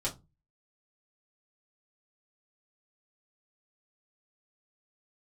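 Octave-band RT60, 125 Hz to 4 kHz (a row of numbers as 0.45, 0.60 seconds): 0.50, 0.40, 0.25, 0.20, 0.15, 0.15 seconds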